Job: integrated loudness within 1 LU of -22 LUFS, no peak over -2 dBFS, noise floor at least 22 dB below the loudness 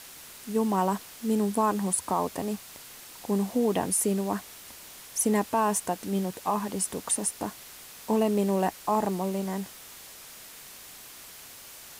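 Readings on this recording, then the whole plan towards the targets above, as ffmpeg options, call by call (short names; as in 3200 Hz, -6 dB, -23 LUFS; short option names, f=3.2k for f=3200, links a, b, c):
noise floor -47 dBFS; noise floor target -50 dBFS; loudness -28.0 LUFS; peak -14.0 dBFS; loudness target -22.0 LUFS
-> -af "afftdn=nr=6:nf=-47"
-af "volume=6dB"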